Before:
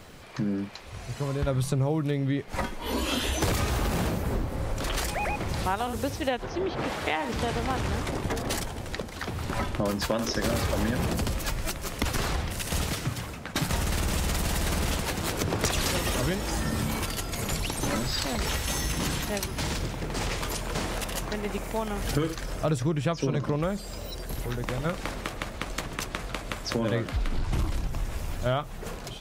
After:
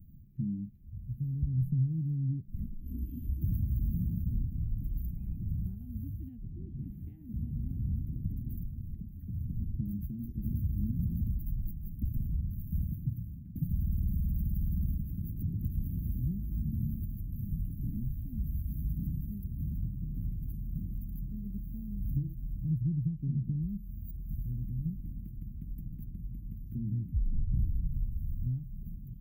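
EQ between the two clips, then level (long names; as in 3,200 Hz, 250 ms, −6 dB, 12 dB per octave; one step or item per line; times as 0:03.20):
inverse Chebyshev band-stop filter 500–9,100 Hz, stop band 50 dB
−1.5 dB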